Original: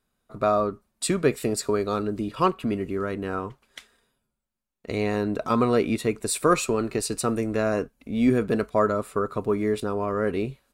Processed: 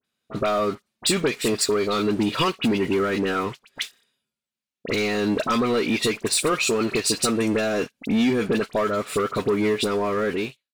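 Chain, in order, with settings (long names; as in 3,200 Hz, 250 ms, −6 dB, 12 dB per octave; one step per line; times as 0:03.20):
fade-out on the ending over 1.12 s
meter weighting curve D
downward compressor 10 to 1, threshold −27 dBFS, peak gain reduction 14 dB
high-pass filter 65 Hz 12 dB per octave
low-shelf EQ 390 Hz +4.5 dB
leveller curve on the samples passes 3
all-pass dispersion highs, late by 47 ms, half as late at 2,100 Hz
level −1.5 dB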